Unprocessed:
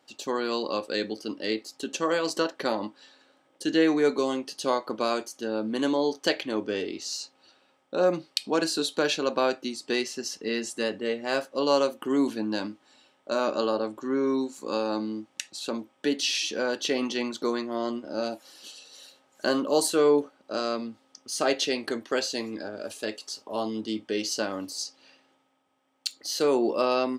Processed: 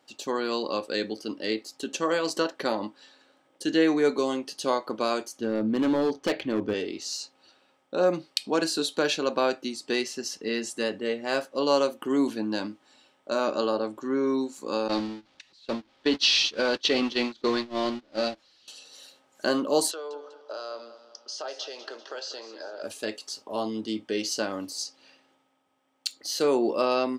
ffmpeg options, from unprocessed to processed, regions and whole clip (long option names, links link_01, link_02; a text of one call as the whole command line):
ffmpeg -i in.wav -filter_complex "[0:a]asettb=1/sr,asplit=3[link_01][link_02][link_03];[link_01]atrim=end=5.394[link_04];[link_02]atrim=start=5.39:end=6.74,asetpts=PTS-STARTPTS,afade=type=in:duration=0.004:curve=qsin,afade=type=out:start_time=1.346:duration=0.004:curve=qsin,aemphasis=mode=reproduction:type=bsi,asoftclip=type=hard:threshold=-19.5dB[link_05];[link_03]atrim=start=6.736[link_06];[link_04][link_05]acrossfade=duration=0.004:curve1=hsin:curve2=qsin[link_07];[link_07][link_06]acrossfade=duration=0.004:curve1=qsin:curve2=hsin,asettb=1/sr,asplit=3[link_08][link_09][link_10];[link_08]atrim=end=14.884[link_11];[link_09]atrim=start=14.88:end=18.68,asetpts=PTS-STARTPTS,afade=type=in:duration=0.004:curve=qsin,afade=type=out:start_time=3.796:duration=0.004:curve=qsin,aeval=exprs='val(0)+0.5*0.0316*sgn(val(0))':channel_layout=same,agate=range=-29dB:threshold=-28dB:ratio=16:release=100:detection=peak,lowpass=frequency=4300:width_type=q:width=1.9[link_12];[link_10]atrim=start=18.676[link_13];[link_11][link_12]acrossfade=duration=0.004:curve1=hsin:curve2=qsin[link_14];[link_14][link_13]acrossfade=duration=0.004:curve1=qsin:curve2=hsin,asettb=1/sr,asplit=3[link_15][link_16][link_17];[link_15]atrim=end=19.914[link_18];[link_16]atrim=start=19.91:end=22.83,asetpts=PTS-STARTPTS,afade=type=in:duration=0.004:curve=qsin,afade=type=out:start_time=2.916:duration=0.004:curve=qsin,acompressor=threshold=-35dB:ratio=5:attack=3.2:release=140:knee=1:detection=peak,highpass=frequency=400:width=0.5412,highpass=frequency=400:width=1.3066,equalizer=frequency=590:width_type=q:width=4:gain=5,equalizer=frequency=880:width_type=q:width=4:gain=5,equalizer=frequency=1400:width_type=q:width=4:gain=5,equalizer=frequency=2200:width_type=q:width=4:gain=-8,equalizer=frequency=3200:width_type=q:width=4:gain=4,equalizer=frequency=5200:width_type=q:width=4:gain=6,lowpass=frequency=6200:width=0.5412,lowpass=frequency=6200:width=1.3066,aecho=1:1:196|392|588|784|980:0.224|0.103|0.0474|0.0218|0.01,atrim=end_sample=128772[link_19];[link_17]atrim=start=22.826[link_20];[link_18][link_19]acrossfade=duration=0.004:curve1=hsin:curve2=qsin[link_21];[link_21][link_20]acrossfade=duration=0.004:curve1=qsin:curve2=hsin" out.wav